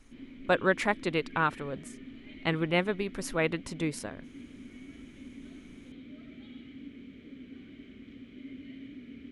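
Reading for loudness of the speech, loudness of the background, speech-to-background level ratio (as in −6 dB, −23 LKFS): −30.5 LKFS, −47.5 LKFS, 17.0 dB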